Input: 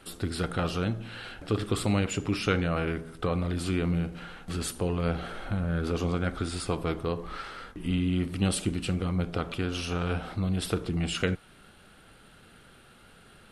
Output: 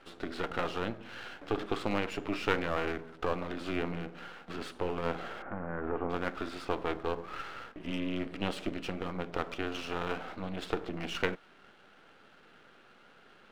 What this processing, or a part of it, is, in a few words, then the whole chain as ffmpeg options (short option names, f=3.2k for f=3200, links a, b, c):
crystal radio: -filter_complex "[0:a]highpass=280,lowpass=2.8k,aeval=exprs='if(lt(val(0),0),0.251*val(0),val(0))':c=same,asettb=1/sr,asplit=3[a][b][c];[a]atrim=end=5.424[d];[b]atrim=start=5.42:end=6.1,asetpts=PTS-STARTPTS,afade=t=in:d=0.004:c=qsin,afade=t=out:st=0.676:d=0.004:c=qsin,lowpass=f=1.8k:w=0.5412,lowpass=f=1.8k:w=1.3066[e];[c]atrim=start=6.096[f];[d][e]acrossfade=d=0.004:c1=hsin:c2=qsin[g];[g][f]acrossfade=d=0.004:c1=qsin:c2=hsin,volume=2dB"